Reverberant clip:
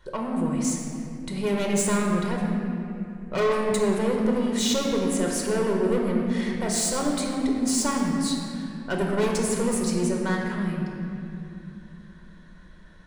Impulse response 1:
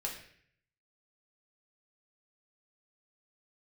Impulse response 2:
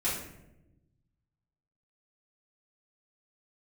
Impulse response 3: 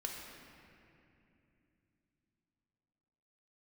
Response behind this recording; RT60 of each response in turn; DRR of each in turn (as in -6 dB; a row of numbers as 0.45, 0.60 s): 3; 0.60, 0.90, 2.8 s; -1.5, -9.0, -0.5 dB